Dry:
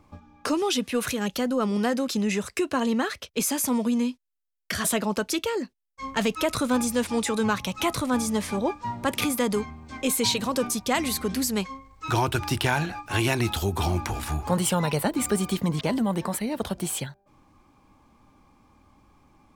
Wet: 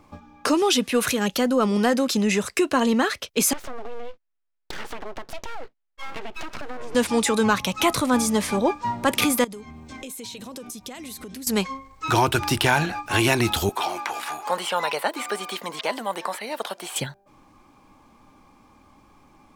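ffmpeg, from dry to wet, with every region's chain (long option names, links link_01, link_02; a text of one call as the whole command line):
ffmpeg -i in.wav -filter_complex "[0:a]asettb=1/sr,asplit=3[link_01][link_02][link_03];[link_01]atrim=end=3.534[link_04];[link_02]atrim=start=3.53:end=6.95,asetpts=PTS-STARTPTS,afade=type=in:duration=0.004:curve=qsin,afade=type=out:start_time=3.416:duration=0.004:curve=qsin,lowpass=2300,acompressor=threshold=-32dB:ratio=12:attack=3.2:release=140:knee=1:detection=peak,aeval=exprs='abs(val(0))':channel_layout=same[link_05];[link_03]atrim=start=6.946[link_06];[link_04][link_05]acrossfade=duration=0.004:curve1=hsin:curve2=qsin[link_07];[link_07][link_06]acrossfade=duration=0.004:curve1=qsin:curve2=hsin,asettb=1/sr,asplit=3[link_08][link_09][link_10];[link_08]atrim=end=9.444[link_11];[link_09]atrim=start=9.44:end=11.47,asetpts=PTS-STARTPTS,afade=type=in:duration=0.004:curve=qsin,afade=type=out:start_time=2.026:duration=0.004:curve=qsin,equalizer=frequency=1200:width=0.79:gain=-6.5,bandreject=frequency=4600:width=13,acompressor=threshold=-38dB:ratio=16:attack=3.2:release=140:knee=1:detection=peak[link_12];[link_10]atrim=start=11.466[link_13];[link_11][link_12]acrossfade=duration=0.004:curve1=hsin:curve2=qsin[link_14];[link_14][link_13]acrossfade=duration=0.004:curve1=qsin:curve2=hsin,asettb=1/sr,asplit=3[link_15][link_16][link_17];[link_15]atrim=end=13.694[link_18];[link_16]atrim=start=13.69:end=16.96,asetpts=PTS-STARTPTS,afade=type=in:duration=0.004:curve=qsin,afade=type=out:start_time=3.266:duration=0.004:curve=qsin,highpass=630,acrossover=split=4200[link_19][link_20];[link_20]acompressor=threshold=-44dB:ratio=4:attack=1:release=60[link_21];[link_19][link_21]amix=inputs=2:normalize=0[link_22];[link_17]atrim=start=16.956[link_23];[link_18][link_22]acrossfade=duration=0.004:curve1=hsin:curve2=qsin[link_24];[link_24][link_23]acrossfade=duration=0.004:curve1=qsin:curve2=hsin,acontrast=44,equalizer=frequency=61:width=0.47:gain=-7" out.wav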